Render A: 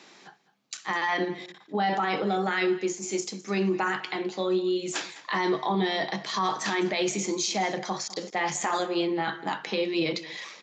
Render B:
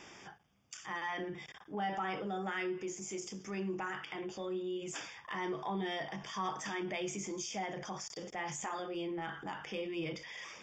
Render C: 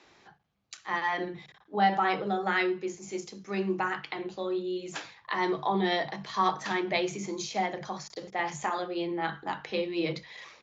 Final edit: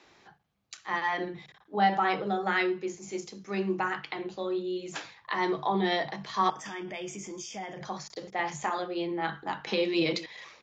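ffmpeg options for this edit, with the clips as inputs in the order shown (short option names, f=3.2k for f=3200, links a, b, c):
-filter_complex "[2:a]asplit=3[a][b][c];[a]atrim=end=6.502[d];[1:a]atrim=start=6.498:end=7.812[e];[b]atrim=start=7.808:end=9.672[f];[0:a]atrim=start=9.668:end=10.262[g];[c]atrim=start=10.258[h];[d][e]acrossfade=d=0.004:c1=hsin:c2=hsin[i];[i][f]acrossfade=d=0.004:c1=hsin:c2=hsin[j];[j][g]acrossfade=d=0.004:c1=hsin:c2=hsin[k];[k][h]acrossfade=d=0.004:c1=hsin:c2=hsin"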